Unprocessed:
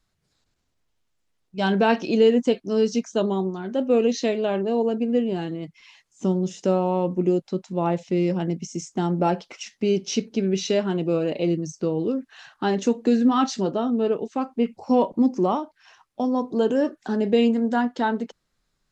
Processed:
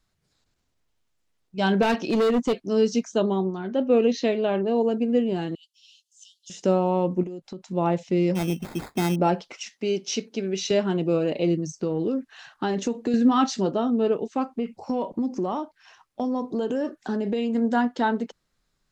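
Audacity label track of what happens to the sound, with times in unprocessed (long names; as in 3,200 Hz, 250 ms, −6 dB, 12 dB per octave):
1.820000	2.680000	hard clipping −18 dBFS
3.180000	4.760000	low-pass filter 4,800 Hz
5.550000	6.500000	Butterworth high-pass 2,800 Hz 96 dB per octave
7.230000	7.690000	downward compressor 16 to 1, threshold −31 dBFS
8.350000	9.160000	sample-rate reduction 2,900 Hz
9.690000	10.710000	high-pass filter 410 Hz 6 dB per octave
11.690000	13.140000	downward compressor, threshold −20 dBFS
14.510000	17.550000	downward compressor, threshold −22 dBFS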